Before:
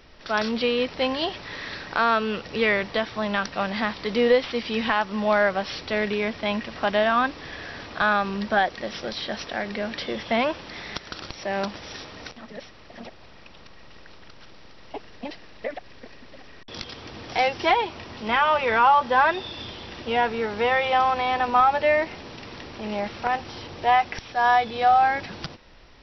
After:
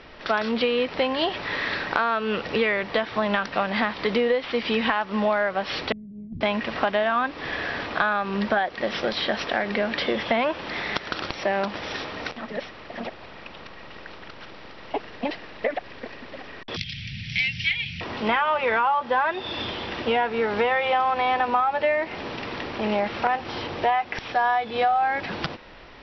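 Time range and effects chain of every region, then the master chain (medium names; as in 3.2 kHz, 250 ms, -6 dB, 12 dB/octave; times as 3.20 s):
5.92–6.41 s: inverse Chebyshev low-pass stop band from 570 Hz, stop band 50 dB + compressor with a negative ratio -40 dBFS, ratio -0.5
16.76–18.01 s: elliptic band-stop 170–2200 Hz + peaking EQ 130 Hz +7.5 dB 1.8 oct + upward compressor, threshold -33 dBFS
whole clip: low-pass 3.3 kHz 12 dB/octave; bass shelf 160 Hz -9 dB; compression 6:1, threshold -29 dBFS; trim +9 dB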